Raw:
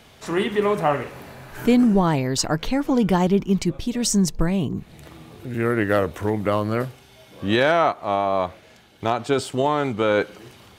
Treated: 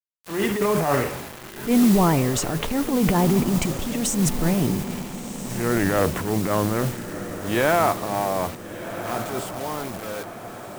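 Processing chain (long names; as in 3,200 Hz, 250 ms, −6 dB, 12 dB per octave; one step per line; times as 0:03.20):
fade-out on the ending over 3.40 s
parametric band 4,700 Hz −14.5 dB 0.76 octaves
transient designer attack −11 dB, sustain +8 dB
noise that follows the level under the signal 16 dB
tape wow and flutter 29 cents
bit reduction 6 bits
feedback delay with all-pass diffusion 1,392 ms, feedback 53%, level −11 dB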